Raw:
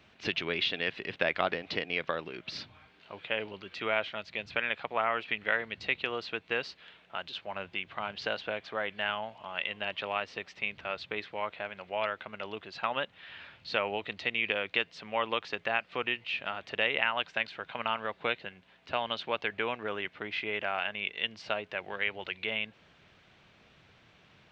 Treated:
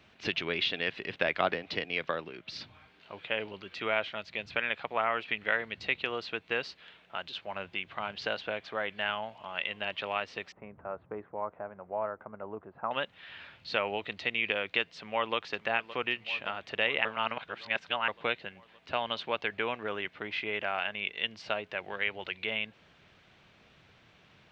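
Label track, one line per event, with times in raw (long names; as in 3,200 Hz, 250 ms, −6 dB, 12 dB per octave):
1.270000	2.610000	multiband upward and downward expander depth 40%
10.520000	12.910000	low-pass filter 1,200 Hz 24 dB per octave
14.960000	15.360000	delay throw 570 ms, feedback 70%, level −14 dB
17.050000	18.080000	reverse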